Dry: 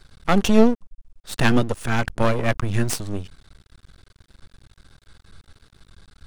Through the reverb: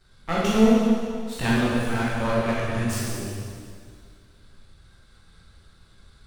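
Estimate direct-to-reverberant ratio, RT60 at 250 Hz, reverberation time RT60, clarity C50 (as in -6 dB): -8.5 dB, 2.2 s, 2.1 s, -4.0 dB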